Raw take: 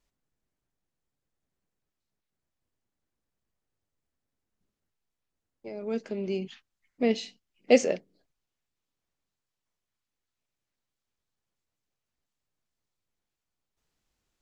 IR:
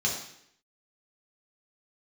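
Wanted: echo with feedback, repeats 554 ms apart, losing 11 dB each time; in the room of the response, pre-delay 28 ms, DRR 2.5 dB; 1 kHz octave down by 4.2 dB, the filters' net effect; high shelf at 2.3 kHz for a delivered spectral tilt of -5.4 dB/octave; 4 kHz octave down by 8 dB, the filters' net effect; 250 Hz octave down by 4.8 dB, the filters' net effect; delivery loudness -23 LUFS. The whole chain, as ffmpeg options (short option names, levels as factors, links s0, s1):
-filter_complex "[0:a]equalizer=f=250:t=o:g=-5,equalizer=f=1000:t=o:g=-6,highshelf=f=2300:g=-4,equalizer=f=4000:t=o:g=-7,aecho=1:1:554|1108|1662:0.282|0.0789|0.0221,asplit=2[s0][s1];[1:a]atrim=start_sample=2205,adelay=28[s2];[s1][s2]afir=irnorm=-1:irlink=0,volume=0.282[s3];[s0][s3]amix=inputs=2:normalize=0,volume=2.37"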